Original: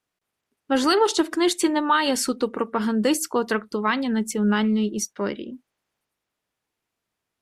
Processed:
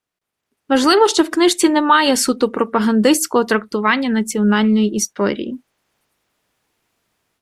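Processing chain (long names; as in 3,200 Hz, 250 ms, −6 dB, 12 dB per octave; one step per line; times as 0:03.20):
0:03.68–0:04.22: parametric band 2,100 Hz +5 dB
automatic gain control gain up to 14 dB
level −1 dB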